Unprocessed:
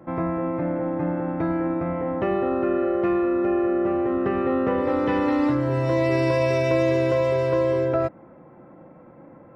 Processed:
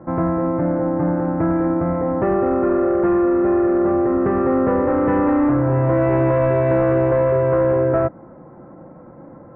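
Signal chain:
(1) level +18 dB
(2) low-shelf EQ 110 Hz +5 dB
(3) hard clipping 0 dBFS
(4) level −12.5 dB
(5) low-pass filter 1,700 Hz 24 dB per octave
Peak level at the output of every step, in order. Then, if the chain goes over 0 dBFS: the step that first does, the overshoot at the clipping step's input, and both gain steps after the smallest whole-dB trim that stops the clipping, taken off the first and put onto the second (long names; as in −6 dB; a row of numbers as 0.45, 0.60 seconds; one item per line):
+7.5, +8.0, 0.0, −12.5, −11.0 dBFS
step 1, 8.0 dB
step 1 +10 dB, step 4 −4.5 dB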